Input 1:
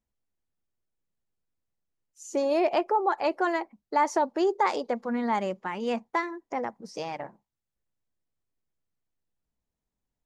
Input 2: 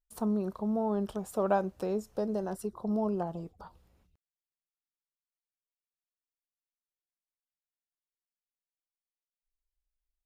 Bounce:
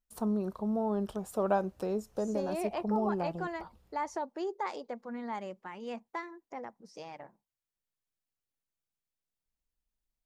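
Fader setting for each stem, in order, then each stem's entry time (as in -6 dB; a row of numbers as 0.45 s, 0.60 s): -11.0 dB, -1.0 dB; 0.00 s, 0.00 s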